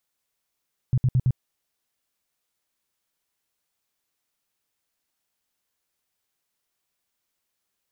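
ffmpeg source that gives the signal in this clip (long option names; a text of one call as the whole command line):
ffmpeg -f lavfi -i "aevalsrc='0.158*sin(2*PI*127*mod(t,0.11))*lt(mod(t,0.11),6/127)':duration=0.44:sample_rate=44100" out.wav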